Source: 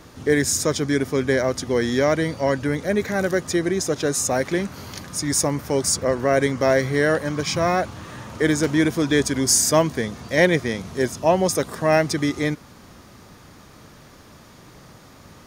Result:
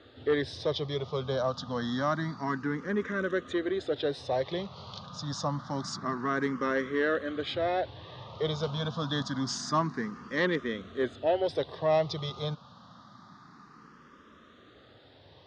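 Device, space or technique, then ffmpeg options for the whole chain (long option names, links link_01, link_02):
barber-pole phaser into a guitar amplifier: -filter_complex "[0:a]asplit=2[link_01][link_02];[link_02]afreqshift=0.27[link_03];[link_01][link_03]amix=inputs=2:normalize=1,asoftclip=type=tanh:threshold=-11.5dB,highpass=100,equalizer=frequency=330:width_type=q:width=4:gain=-3,equalizer=frequency=1200:width_type=q:width=4:gain=7,equalizer=frequency=2300:width_type=q:width=4:gain=-9,equalizer=frequency=3600:width_type=q:width=4:gain=7,lowpass=frequency=4500:width=0.5412,lowpass=frequency=4500:width=1.3066,volume=-5dB"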